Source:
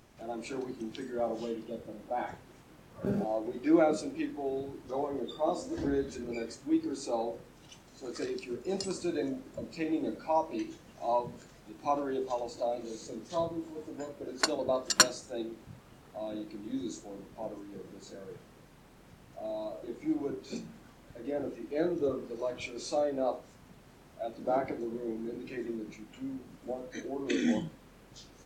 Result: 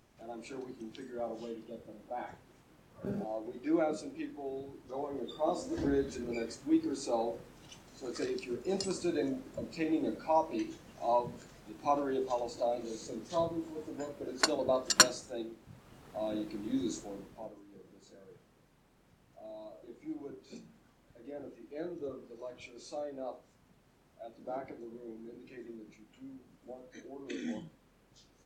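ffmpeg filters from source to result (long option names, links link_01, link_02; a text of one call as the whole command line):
ffmpeg -i in.wav -af "volume=9dB,afade=type=in:start_time=4.91:duration=0.86:silence=0.501187,afade=type=out:start_time=15.14:duration=0.47:silence=0.473151,afade=type=in:start_time=15.61:duration=0.64:silence=0.354813,afade=type=out:start_time=16.98:duration=0.56:silence=0.237137" out.wav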